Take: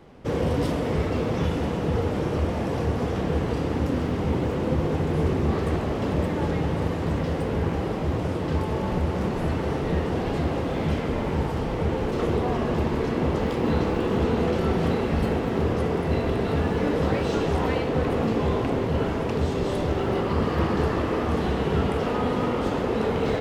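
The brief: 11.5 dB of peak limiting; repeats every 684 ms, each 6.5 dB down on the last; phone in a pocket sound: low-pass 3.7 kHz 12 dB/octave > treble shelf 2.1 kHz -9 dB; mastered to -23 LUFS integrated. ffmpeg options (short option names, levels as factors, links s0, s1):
-af "alimiter=limit=0.0841:level=0:latency=1,lowpass=3700,highshelf=f=2100:g=-9,aecho=1:1:684|1368|2052|2736|3420|4104:0.473|0.222|0.105|0.0491|0.0231|0.0109,volume=2.11"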